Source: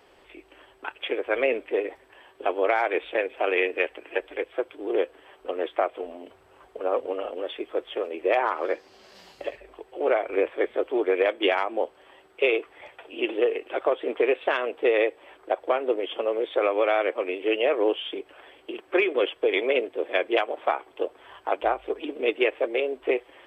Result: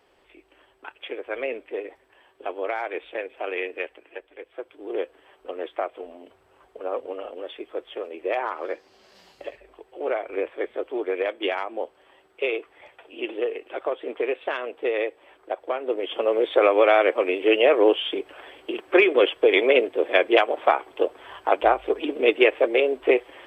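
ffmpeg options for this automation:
-af "volume=13.5dB,afade=t=out:st=3.81:d=0.49:silence=0.398107,afade=t=in:st=4.3:d=0.69:silence=0.316228,afade=t=in:st=15.8:d=0.65:silence=0.354813"

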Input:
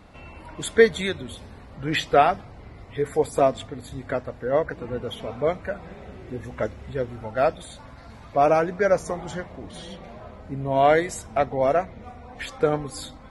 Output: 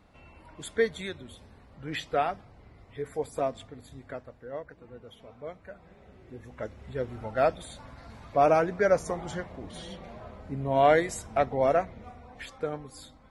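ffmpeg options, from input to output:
-af "volume=4dB,afade=t=out:st=3.77:d=0.87:silence=0.446684,afade=t=in:st=5.49:d=1.14:silence=0.446684,afade=t=in:st=6.63:d=0.57:silence=0.446684,afade=t=out:st=11.8:d=0.88:silence=0.375837"

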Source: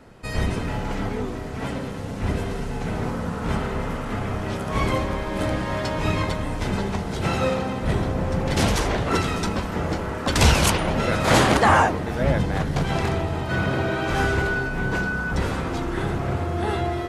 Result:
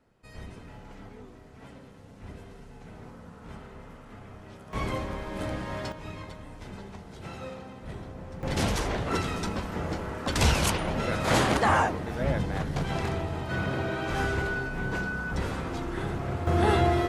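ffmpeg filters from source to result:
-af "asetnsamples=n=441:p=0,asendcmd='4.73 volume volume -8.5dB;5.92 volume volume -17dB;8.43 volume volume -6.5dB;16.47 volume volume 2dB',volume=-19dB"

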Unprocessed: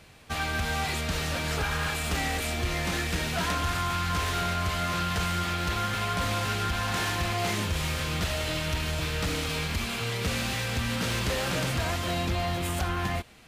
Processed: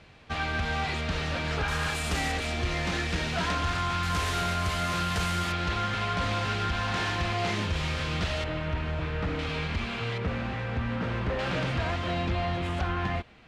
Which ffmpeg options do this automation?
-af "asetnsamples=n=441:p=0,asendcmd='1.68 lowpass f 9700;2.32 lowpass f 5600;4.03 lowpass f 11000;5.52 lowpass f 4700;8.44 lowpass f 1900;9.39 lowpass f 3100;10.18 lowpass f 1700;11.39 lowpass f 3200',lowpass=4.1k"

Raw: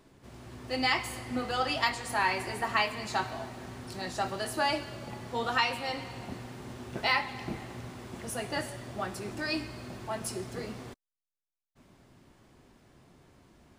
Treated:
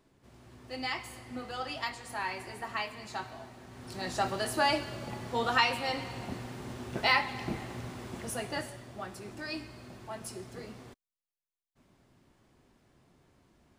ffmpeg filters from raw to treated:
-af "volume=1.5dB,afade=t=in:st=3.69:d=0.44:silence=0.354813,afade=t=out:st=8.07:d=0.8:silence=0.421697"

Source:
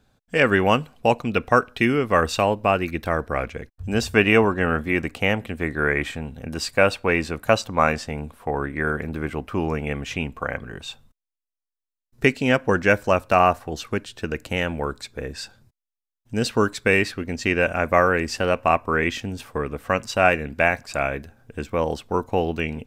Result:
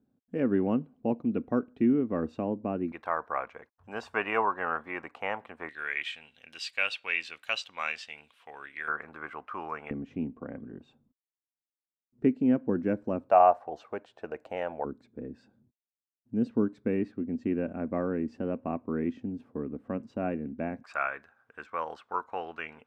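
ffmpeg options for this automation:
-af "asetnsamples=n=441:p=0,asendcmd='2.92 bandpass f 1000;5.69 bandpass f 3000;8.88 bandpass f 1200;9.91 bandpass f 260;13.3 bandpass f 700;14.85 bandpass f 250;20.84 bandpass f 1300',bandpass=f=260:t=q:w=2.6:csg=0"

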